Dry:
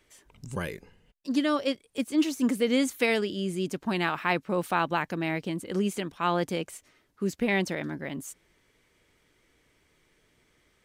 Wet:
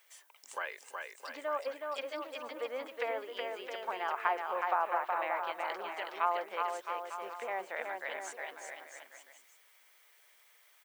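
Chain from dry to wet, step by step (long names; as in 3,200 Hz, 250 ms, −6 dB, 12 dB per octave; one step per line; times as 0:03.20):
treble cut that deepens with the level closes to 950 Hz, closed at −23 dBFS
high-pass filter 660 Hz 24 dB per octave
treble cut that deepens with the level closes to 2,500 Hz, closed at −32.5 dBFS
background noise violet −69 dBFS
bouncing-ball delay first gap 370 ms, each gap 0.8×, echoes 5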